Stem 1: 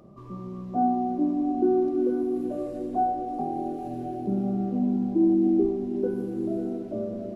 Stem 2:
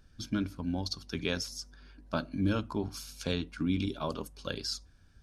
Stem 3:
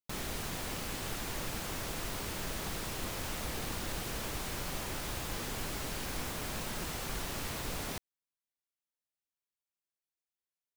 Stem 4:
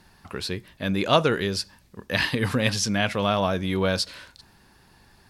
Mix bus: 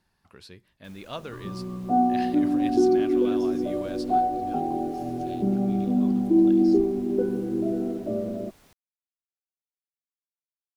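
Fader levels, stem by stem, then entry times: +2.5, −15.0, −19.0, −17.0 decibels; 1.15, 2.00, 0.75, 0.00 seconds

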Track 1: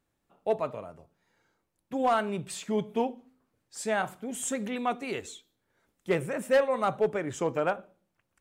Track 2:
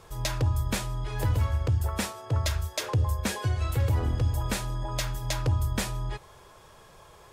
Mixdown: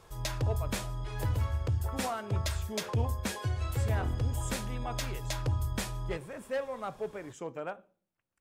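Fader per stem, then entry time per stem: −10.5, −5.0 decibels; 0.00, 0.00 seconds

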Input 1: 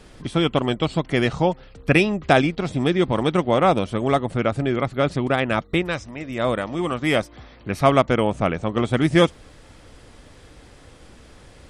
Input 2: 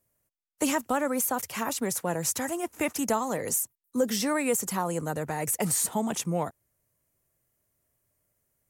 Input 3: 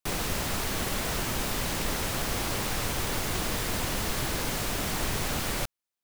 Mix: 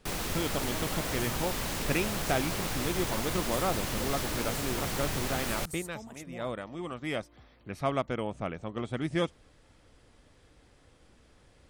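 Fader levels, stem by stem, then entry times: −13.5, −17.5, −3.5 decibels; 0.00, 0.00, 0.00 seconds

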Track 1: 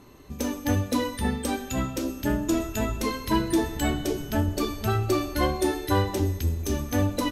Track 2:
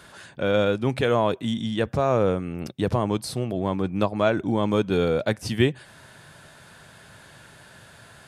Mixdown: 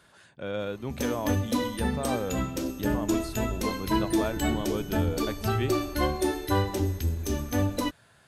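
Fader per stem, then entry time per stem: −2.0, −11.0 decibels; 0.60, 0.00 seconds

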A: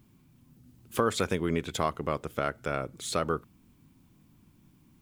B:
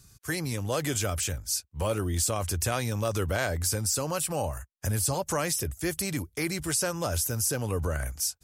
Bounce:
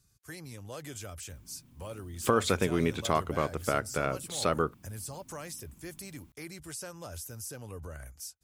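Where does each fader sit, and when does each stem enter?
+1.0, −13.5 decibels; 1.30, 0.00 seconds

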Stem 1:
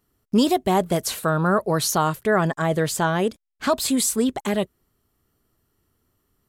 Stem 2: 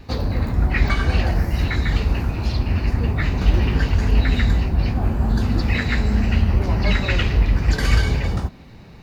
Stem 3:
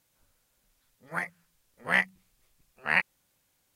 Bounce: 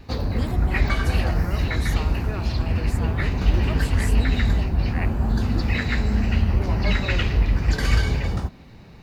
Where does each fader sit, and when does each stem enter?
−16.5, −2.5, −10.5 decibels; 0.00, 0.00, 2.05 seconds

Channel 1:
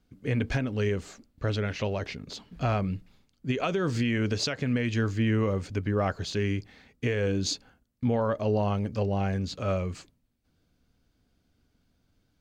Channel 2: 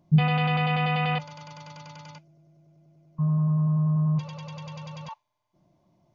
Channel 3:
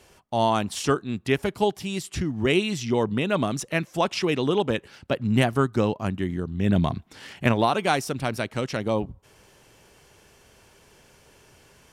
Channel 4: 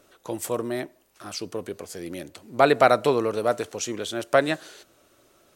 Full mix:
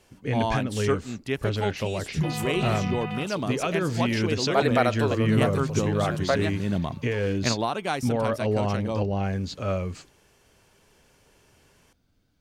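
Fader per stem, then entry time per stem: +1.0, −9.0, −5.5, −5.5 decibels; 0.00, 2.05, 0.00, 1.95 seconds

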